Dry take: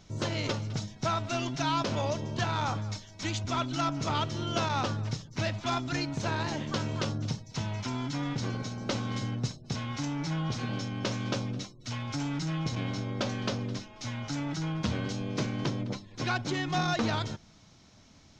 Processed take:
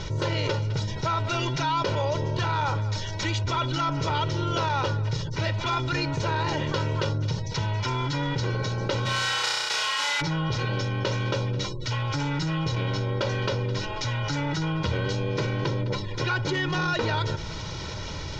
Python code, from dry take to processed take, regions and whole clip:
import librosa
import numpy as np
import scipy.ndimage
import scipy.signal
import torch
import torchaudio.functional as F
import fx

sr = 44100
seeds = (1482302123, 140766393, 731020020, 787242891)

y = fx.envelope_flatten(x, sr, power=0.3, at=(9.05, 10.2), fade=0.02)
y = fx.highpass(y, sr, hz=750.0, slope=12, at=(9.05, 10.2), fade=0.02)
y = fx.room_flutter(y, sr, wall_m=5.6, rt60_s=0.88, at=(9.05, 10.2), fade=0.02)
y = scipy.signal.sosfilt(scipy.signal.butter(2, 4700.0, 'lowpass', fs=sr, output='sos'), y)
y = y + 0.76 * np.pad(y, (int(2.1 * sr / 1000.0), 0))[:len(y)]
y = fx.env_flatten(y, sr, amount_pct=70)